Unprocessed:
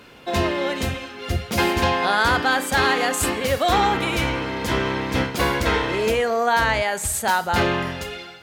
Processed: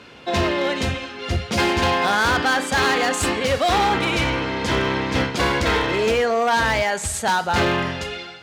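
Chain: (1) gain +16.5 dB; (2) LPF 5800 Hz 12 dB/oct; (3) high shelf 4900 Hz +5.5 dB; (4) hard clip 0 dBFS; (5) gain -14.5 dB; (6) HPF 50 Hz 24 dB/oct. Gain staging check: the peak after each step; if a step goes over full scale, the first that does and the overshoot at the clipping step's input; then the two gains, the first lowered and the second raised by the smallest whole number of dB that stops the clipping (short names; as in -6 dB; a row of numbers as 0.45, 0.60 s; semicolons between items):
+8.5, +8.5, +9.5, 0.0, -14.5, -8.0 dBFS; step 1, 9.5 dB; step 1 +6.5 dB, step 5 -4.5 dB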